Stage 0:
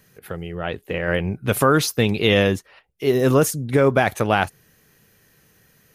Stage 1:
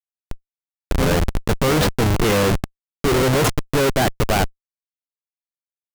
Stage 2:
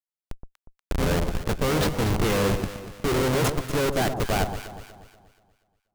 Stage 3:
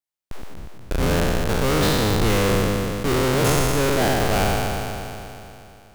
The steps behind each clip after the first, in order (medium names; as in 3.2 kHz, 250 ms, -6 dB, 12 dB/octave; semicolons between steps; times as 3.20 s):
reverse echo 635 ms -12.5 dB; level-controlled noise filter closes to 320 Hz, open at -12 dBFS; Schmitt trigger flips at -21 dBFS; trim +5 dB
echo whose repeats swap between lows and highs 120 ms, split 1.1 kHz, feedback 63%, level -7 dB; trim -6.5 dB
spectral sustain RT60 2.89 s